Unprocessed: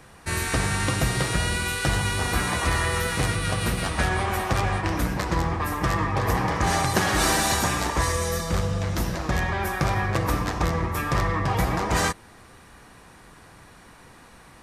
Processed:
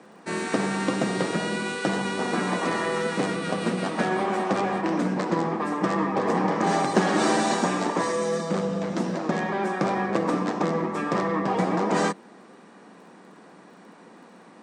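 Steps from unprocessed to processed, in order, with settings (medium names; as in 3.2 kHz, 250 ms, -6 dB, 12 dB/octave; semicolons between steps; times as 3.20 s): Chebyshev band-pass 190–8500 Hz, order 4; tilt shelf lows +6.5 dB, about 1.1 kHz; crackle 17 per s -50 dBFS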